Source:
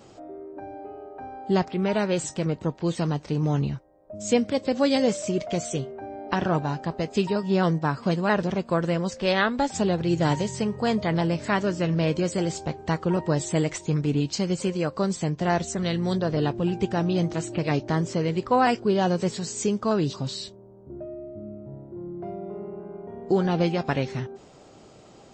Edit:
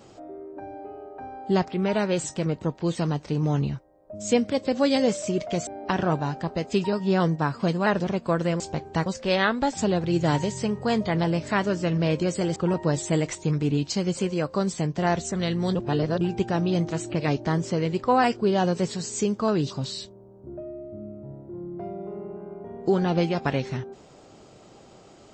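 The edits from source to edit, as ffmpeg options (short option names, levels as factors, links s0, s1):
-filter_complex "[0:a]asplit=7[s0][s1][s2][s3][s4][s5][s6];[s0]atrim=end=5.672[s7];[s1]atrim=start=6.098:end=9.032[s8];[s2]atrim=start=12.528:end=12.992[s9];[s3]atrim=start=9.028:end=12.532[s10];[s4]atrim=start=12.988:end=16.182[s11];[s5]atrim=start=16.178:end=16.642,asetpts=PTS-STARTPTS,areverse[s12];[s6]atrim=start=16.638[s13];[s7][s8]acrossfade=d=0.004:c1=hsin:c2=hsin[s14];[s14][s9]acrossfade=d=0.004:c1=hsin:c2=hsin[s15];[s15][s10]acrossfade=d=0.004:c1=hsin:c2=hsin[s16];[s16][s11]acrossfade=d=0.004:c1=hsin:c2=hsin[s17];[s17][s12]acrossfade=d=0.004:c1=hsin:c2=hsin[s18];[s18][s13]acrossfade=d=0.004:c1=hsin:c2=hsin"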